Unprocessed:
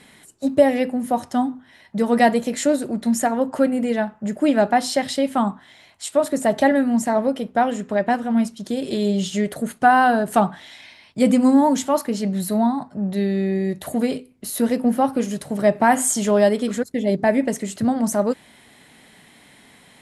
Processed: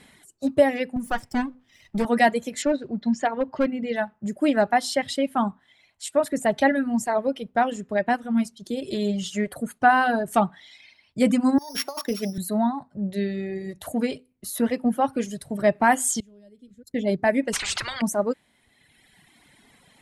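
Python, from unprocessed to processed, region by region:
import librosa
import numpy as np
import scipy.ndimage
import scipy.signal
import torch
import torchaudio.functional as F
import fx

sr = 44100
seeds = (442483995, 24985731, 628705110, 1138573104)

y = fx.chain(x, sr, fx.lower_of_two(delay_ms=0.39),
    fx.band_squash(depth_pct=40), at=(0.96, 2.05))
y = fx.chain(y, sr, fx.lowpass(hz=5300.0, slope=24),
    fx.notch(hz=1300.0, q=20.0),
    fx.clip_hard(threshold_db=-12.0), at=(2.62, 3.96))
y = fx.chain(y, sr, fx.sample_sort(block=8),
    fx.highpass(hz=260.0, slope=12),
    fx.over_compress(threshold_db=-23.0, ratio=-0.5), at=(11.58, 12.38))
y = fx.chain(y, sr, fx.tone_stack(knobs='10-0-1'),
    fx.band_squash(depth_pct=40), at=(16.2, 16.87))
y = fx.chain(y, sr, fx.lowpass(hz=5400.0, slope=12),
    fx.spectral_comp(ratio=10.0), at=(17.53, 18.02))
y = fx.dynamic_eq(y, sr, hz=2100.0, q=0.81, threshold_db=-34.0, ratio=4.0, max_db=4)
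y = fx.dereverb_blind(y, sr, rt60_s=1.6)
y = fx.low_shelf(y, sr, hz=82.0, db=6.5)
y = y * librosa.db_to_amplitude(-3.5)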